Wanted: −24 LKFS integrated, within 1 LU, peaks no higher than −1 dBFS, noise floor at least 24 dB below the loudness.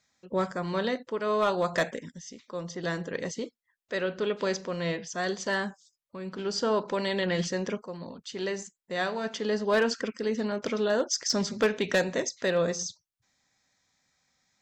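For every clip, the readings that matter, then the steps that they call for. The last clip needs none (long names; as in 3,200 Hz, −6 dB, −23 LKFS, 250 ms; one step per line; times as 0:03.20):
share of clipped samples 0.2%; peaks flattened at −18.0 dBFS; integrated loudness −30.0 LKFS; sample peak −18.0 dBFS; target loudness −24.0 LKFS
→ clipped peaks rebuilt −18 dBFS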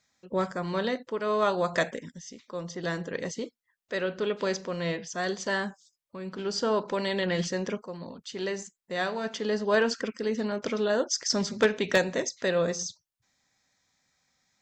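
share of clipped samples 0.0%; integrated loudness −29.5 LKFS; sample peak −9.0 dBFS; target loudness −24.0 LKFS
→ level +5.5 dB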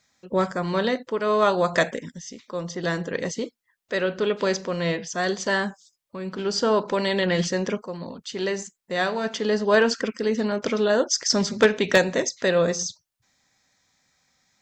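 integrated loudness −24.0 LKFS; sample peak −3.5 dBFS; background noise floor −76 dBFS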